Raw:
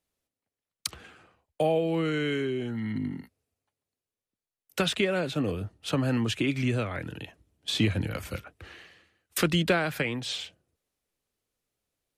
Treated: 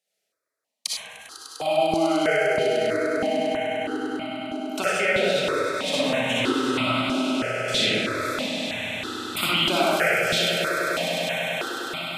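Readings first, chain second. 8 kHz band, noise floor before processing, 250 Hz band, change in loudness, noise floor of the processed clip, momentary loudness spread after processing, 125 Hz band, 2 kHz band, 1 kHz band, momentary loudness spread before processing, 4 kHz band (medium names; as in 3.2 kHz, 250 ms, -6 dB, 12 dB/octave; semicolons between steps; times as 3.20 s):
+7.5 dB, under -85 dBFS, +3.0 dB, +5.5 dB, -80 dBFS, 10 LU, -5.0 dB, +10.0 dB, +11.5 dB, 15 LU, +9.5 dB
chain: frequency weighting A; on a send: echo with a slow build-up 100 ms, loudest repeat 8, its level -13 dB; on the sum: algorithmic reverb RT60 1.4 s, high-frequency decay 0.5×, pre-delay 20 ms, DRR -6.5 dB; stepped phaser 3.1 Hz 290–1700 Hz; trim +3.5 dB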